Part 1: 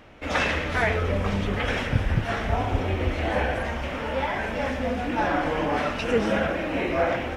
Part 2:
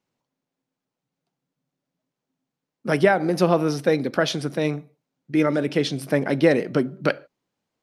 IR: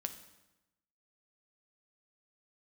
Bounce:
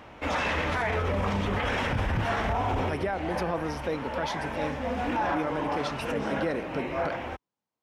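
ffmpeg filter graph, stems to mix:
-filter_complex "[0:a]volume=0dB,asplit=2[link_01][link_02];[link_02]volume=-18dB[link_03];[1:a]volume=-11dB,asplit=2[link_04][link_05];[link_05]apad=whole_len=324866[link_06];[link_01][link_06]sidechaincompress=threshold=-39dB:ratio=8:attack=44:release=767[link_07];[2:a]atrim=start_sample=2205[link_08];[link_03][link_08]afir=irnorm=-1:irlink=0[link_09];[link_07][link_04][link_09]amix=inputs=3:normalize=0,highpass=40,equalizer=frequency=950:width_type=o:width=0.66:gain=7,alimiter=limit=-19.5dB:level=0:latency=1:release=23"

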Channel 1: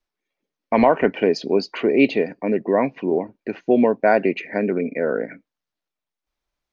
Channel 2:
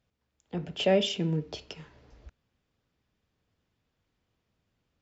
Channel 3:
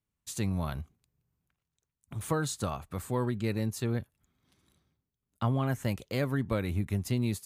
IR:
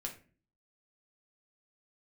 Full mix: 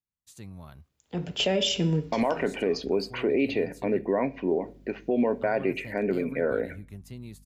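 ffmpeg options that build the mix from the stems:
-filter_complex "[0:a]aeval=exprs='val(0)+0.00447*(sin(2*PI*50*n/s)+sin(2*PI*2*50*n/s)/2+sin(2*PI*3*50*n/s)/3+sin(2*PI*4*50*n/s)/4+sin(2*PI*5*50*n/s)/5)':channel_layout=same,adelay=1400,volume=-6.5dB,asplit=2[link_01][link_02];[link_02]volume=-8dB[link_03];[1:a]highshelf=frequency=4300:gain=8.5,bandreject=frequency=285.1:width_type=h:width=4,bandreject=frequency=570.2:width_type=h:width=4,bandreject=frequency=855.3:width_type=h:width=4,bandreject=frequency=1140.4:width_type=h:width=4,bandreject=frequency=1425.5:width_type=h:width=4,bandreject=frequency=1710.6:width_type=h:width=4,bandreject=frequency=1995.7:width_type=h:width=4,bandreject=frequency=2280.8:width_type=h:width=4,bandreject=frequency=2565.9:width_type=h:width=4,bandreject=frequency=2851:width_type=h:width=4,bandreject=frequency=3136.1:width_type=h:width=4,bandreject=frequency=3421.2:width_type=h:width=4,bandreject=frequency=3706.3:width_type=h:width=4,bandreject=frequency=3991.4:width_type=h:width=4,bandreject=frequency=4276.5:width_type=h:width=4,bandreject=frequency=4561.6:width_type=h:width=4,bandreject=frequency=4846.7:width_type=h:width=4,bandreject=frequency=5131.8:width_type=h:width=4,bandreject=frequency=5416.9:width_type=h:width=4,bandreject=frequency=5702:width_type=h:width=4,bandreject=frequency=5987.1:width_type=h:width=4,bandreject=frequency=6272.2:width_type=h:width=4,bandreject=frequency=6557.3:width_type=h:width=4,bandreject=frequency=6842.4:width_type=h:width=4,bandreject=frequency=7127.5:width_type=h:width=4,bandreject=frequency=7412.6:width_type=h:width=4,bandreject=frequency=7697.7:width_type=h:width=4,bandreject=frequency=7982.8:width_type=h:width=4,bandreject=frequency=8267.9:width_type=h:width=4,bandreject=frequency=8553:width_type=h:width=4,bandreject=frequency=8838.1:width_type=h:width=4,bandreject=frequency=9123.2:width_type=h:width=4,bandreject=frequency=9408.3:width_type=h:width=4,bandreject=frequency=9693.4:width_type=h:width=4,bandreject=frequency=9978.5:width_type=h:width=4,bandreject=frequency=10263.6:width_type=h:width=4,bandreject=frequency=10548.7:width_type=h:width=4,adelay=600,volume=2.5dB,asplit=2[link_04][link_05];[link_05]volume=-12dB[link_06];[2:a]volume=-12.5dB,asplit=2[link_07][link_08];[link_08]apad=whole_len=247429[link_09];[link_04][link_09]sidechaincompress=threshold=-51dB:ratio=8:attack=5.2:release=706[link_10];[3:a]atrim=start_sample=2205[link_11];[link_03][link_06]amix=inputs=2:normalize=0[link_12];[link_12][link_11]afir=irnorm=-1:irlink=0[link_13];[link_01][link_10][link_07][link_13]amix=inputs=4:normalize=0,alimiter=limit=-15.5dB:level=0:latency=1:release=75"

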